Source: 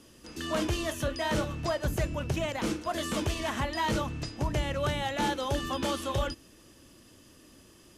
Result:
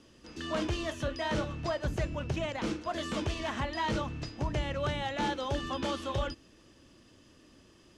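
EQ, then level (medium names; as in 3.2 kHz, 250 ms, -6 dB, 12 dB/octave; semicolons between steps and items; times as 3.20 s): low-pass 5.8 kHz 12 dB/octave; -2.5 dB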